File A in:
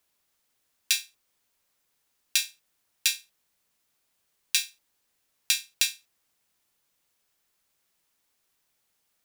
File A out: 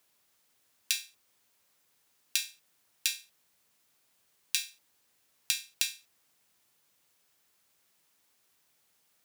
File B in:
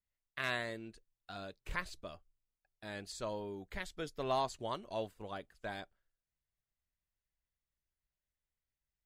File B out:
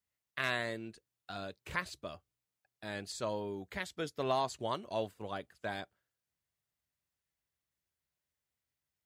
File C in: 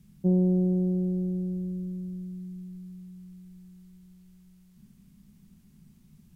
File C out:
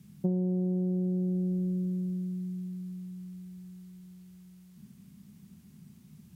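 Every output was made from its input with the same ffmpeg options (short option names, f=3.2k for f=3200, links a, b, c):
-af "highpass=f=73:w=0.5412,highpass=f=73:w=1.3066,acompressor=threshold=-30dB:ratio=6,volume=3.5dB"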